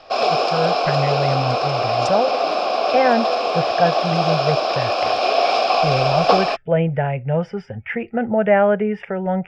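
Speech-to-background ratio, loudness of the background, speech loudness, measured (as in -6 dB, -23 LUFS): -2.5 dB, -19.0 LUFS, -21.5 LUFS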